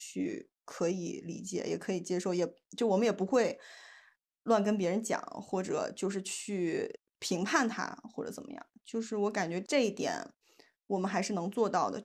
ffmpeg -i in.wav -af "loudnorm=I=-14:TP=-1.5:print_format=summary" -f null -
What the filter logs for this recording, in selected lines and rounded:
Input Integrated:    -33.3 LUFS
Input True Peak:     -13.0 dBTP
Input LRA:             2.4 LU
Input Threshold:     -43.9 LUFS